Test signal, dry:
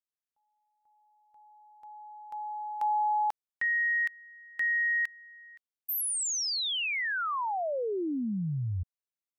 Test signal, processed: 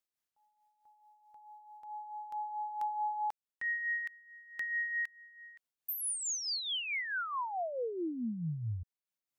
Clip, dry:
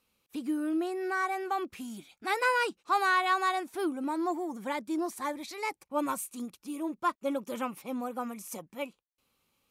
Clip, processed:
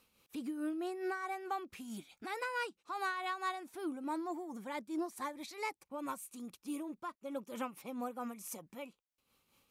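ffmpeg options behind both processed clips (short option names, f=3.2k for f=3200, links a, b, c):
-af "acompressor=threshold=-42dB:ratio=2.5:attack=0.72:release=739:knee=1:detection=rms,tremolo=f=4.6:d=0.53,volume=5.5dB"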